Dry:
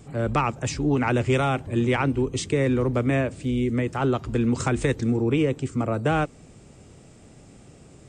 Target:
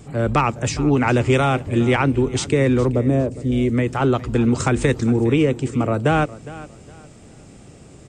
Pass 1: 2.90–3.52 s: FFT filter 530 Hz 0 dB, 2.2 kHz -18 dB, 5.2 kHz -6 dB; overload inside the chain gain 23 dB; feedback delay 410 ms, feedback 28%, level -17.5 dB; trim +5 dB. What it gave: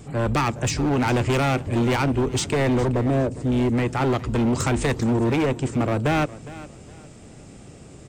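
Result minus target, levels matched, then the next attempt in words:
overload inside the chain: distortion +39 dB
2.90–3.52 s: FFT filter 530 Hz 0 dB, 2.2 kHz -18 dB, 5.2 kHz -6 dB; overload inside the chain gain 12 dB; feedback delay 410 ms, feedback 28%, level -17.5 dB; trim +5 dB

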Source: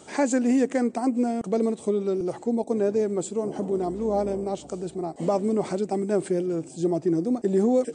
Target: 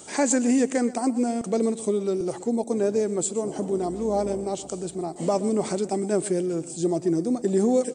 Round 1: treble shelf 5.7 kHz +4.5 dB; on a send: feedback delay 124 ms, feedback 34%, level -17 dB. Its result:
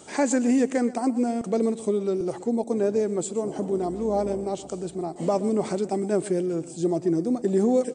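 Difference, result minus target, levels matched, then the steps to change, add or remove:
8 kHz band -6.0 dB
change: treble shelf 5.7 kHz +14 dB

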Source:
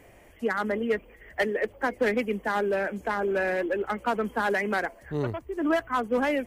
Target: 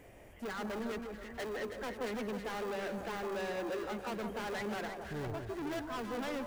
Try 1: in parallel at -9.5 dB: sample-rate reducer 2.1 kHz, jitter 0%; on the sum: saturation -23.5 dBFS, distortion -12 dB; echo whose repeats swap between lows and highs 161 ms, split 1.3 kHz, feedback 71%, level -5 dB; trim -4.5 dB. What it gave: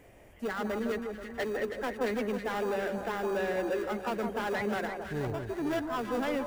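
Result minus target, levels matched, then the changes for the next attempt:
saturation: distortion -6 dB
change: saturation -33 dBFS, distortion -5 dB

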